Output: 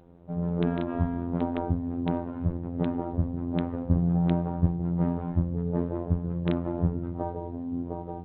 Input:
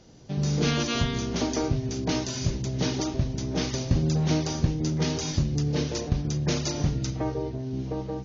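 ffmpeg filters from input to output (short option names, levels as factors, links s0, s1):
-af "afftfilt=real='hypot(re,im)*cos(PI*b)':imag='0':win_size=2048:overlap=0.75,lowpass=f=1200:w=0.5412,lowpass=f=1200:w=1.3066,volume=1.5" -ar 8000 -c:a adpcm_g726 -b:a 40k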